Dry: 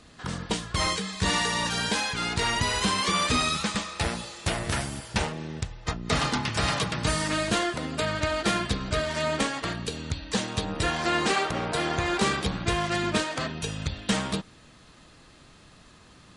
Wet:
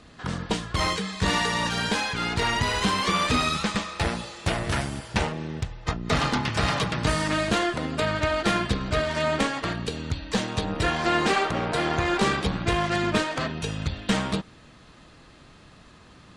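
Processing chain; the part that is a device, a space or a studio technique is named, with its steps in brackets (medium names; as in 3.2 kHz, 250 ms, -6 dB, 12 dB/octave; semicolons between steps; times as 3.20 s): tube preamp driven hard (valve stage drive 15 dB, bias 0.5; treble shelf 5.5 kHz -9 dB); trim +5 dB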